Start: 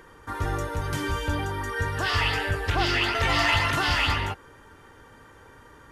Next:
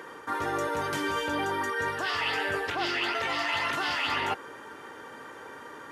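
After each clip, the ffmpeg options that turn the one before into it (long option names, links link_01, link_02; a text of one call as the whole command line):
ffmpeg -i in.wav -af "highpass=270,highshelf=frequency=5200:gain=-5,areverse,acompressor=threshold=-34dB:ratio=12,areverse,volume=8dB" out.wav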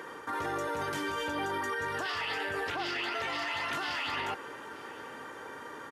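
ffmpeg -i in.wav -af "alimiter=level_in=2dB:limit=-24dB:level=0:latency=1:release=15,volume=-2dB,aecho=1:1:905:0.0794" out.wav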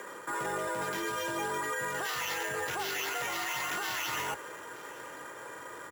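ffmpeg -i in.wav -af "asubboost=boost=6:cutoff=53,acrusher=samples=5:mix=1:aa=0.000001,afreqshift=42" out.wav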